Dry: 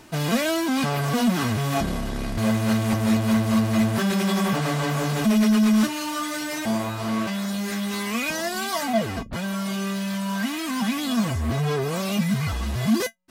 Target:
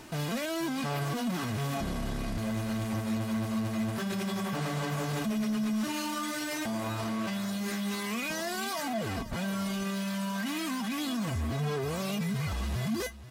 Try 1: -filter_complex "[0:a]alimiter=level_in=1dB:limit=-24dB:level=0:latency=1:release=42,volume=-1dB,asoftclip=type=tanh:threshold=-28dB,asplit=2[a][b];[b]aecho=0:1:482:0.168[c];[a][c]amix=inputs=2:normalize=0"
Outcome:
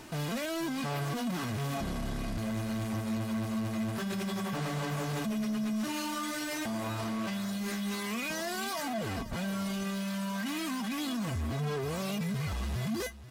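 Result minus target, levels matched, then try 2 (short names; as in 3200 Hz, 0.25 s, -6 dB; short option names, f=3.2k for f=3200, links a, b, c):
soft clip: distortion +11 dB
-filter_complex "[0:a]alimiter=level_in=1dB:limit=-24dB:level=0:latency=1:release=42,volume=-1dB,asoftclip=type=tanh:threshold=-21dB,asplit=2[a][b];[b]aecho=0:1:482:0.168[c];[a][c]amix=inputs=2:normalize=0"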